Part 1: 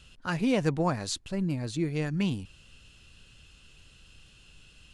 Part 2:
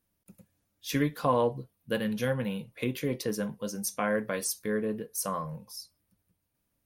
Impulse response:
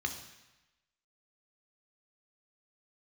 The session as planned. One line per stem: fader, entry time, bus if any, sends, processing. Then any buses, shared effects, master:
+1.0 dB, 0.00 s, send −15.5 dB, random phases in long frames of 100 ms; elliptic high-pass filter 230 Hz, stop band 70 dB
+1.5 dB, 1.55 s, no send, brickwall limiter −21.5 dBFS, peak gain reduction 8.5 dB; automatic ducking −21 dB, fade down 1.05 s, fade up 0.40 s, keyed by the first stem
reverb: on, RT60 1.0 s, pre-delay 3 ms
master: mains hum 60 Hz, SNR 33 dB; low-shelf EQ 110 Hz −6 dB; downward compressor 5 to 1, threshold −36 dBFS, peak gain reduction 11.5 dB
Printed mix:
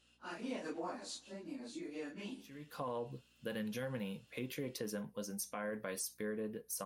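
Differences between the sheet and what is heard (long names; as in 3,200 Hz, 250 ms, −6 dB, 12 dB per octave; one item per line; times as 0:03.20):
stem 1 +1.0 dB → −10.0 dB
stem 2 +1.5 dB → −6.5 dB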